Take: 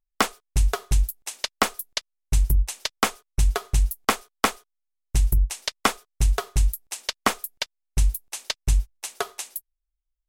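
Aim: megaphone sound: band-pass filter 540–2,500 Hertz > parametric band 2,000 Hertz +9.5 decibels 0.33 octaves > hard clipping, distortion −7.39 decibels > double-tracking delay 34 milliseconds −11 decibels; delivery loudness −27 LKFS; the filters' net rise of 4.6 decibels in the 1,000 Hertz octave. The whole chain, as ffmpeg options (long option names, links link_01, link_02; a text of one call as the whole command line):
ffmpeg -i in.wav -filter_complex "[0:a]highpass=540,lowpass=2500,equalizer=frequency=1000:width_type=o:gain=6,equalizer=frequency=2000:width_type=o:width=0.33:gain=9.5,asoftclip=type=hard:threshold=-13dB,asplit=2[link_01][link_02];[link_02]adelay=34,volume=-11dB[link_03];[link_01][link_03]amix=inputs=2:normalize=0,volume=2.5dB" out.wav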